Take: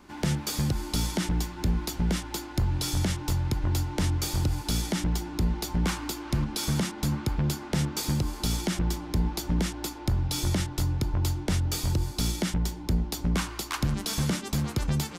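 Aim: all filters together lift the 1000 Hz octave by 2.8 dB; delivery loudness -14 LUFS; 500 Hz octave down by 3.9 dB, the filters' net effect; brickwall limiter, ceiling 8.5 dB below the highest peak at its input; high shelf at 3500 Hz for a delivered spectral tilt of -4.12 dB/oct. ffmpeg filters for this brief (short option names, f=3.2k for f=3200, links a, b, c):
-af "equalizer=f=500:t=o:g=-7,equalizer=f=1k:t=o:g=5,highshelf=f=3.5k:g=4.5,volume=18dB,alimiter=limit=-4.5dB:level=0:latency=1"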